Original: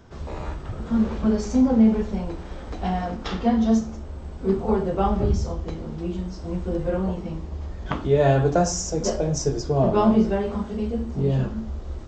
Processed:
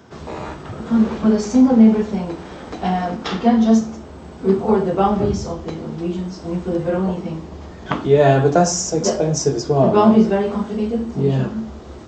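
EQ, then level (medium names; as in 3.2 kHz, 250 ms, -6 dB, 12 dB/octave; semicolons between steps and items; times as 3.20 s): high-pass 140 Hz 12 dB/octave; band-stop 550 Hz, Q 18; +6.5 dB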